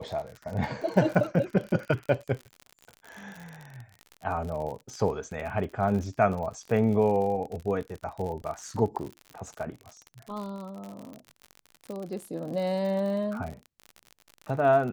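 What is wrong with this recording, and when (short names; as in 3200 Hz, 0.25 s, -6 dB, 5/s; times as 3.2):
crackle 56/s -34 dBFS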